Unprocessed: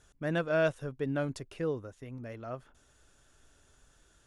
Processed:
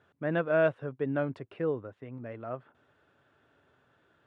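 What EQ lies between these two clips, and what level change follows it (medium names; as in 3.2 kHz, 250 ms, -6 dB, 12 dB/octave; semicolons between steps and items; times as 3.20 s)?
Chebyshev band-pass 100–9400 Hz, order 3; distance through air 470 m; bass shelf 160 Hz -8 dB; +5.0 dB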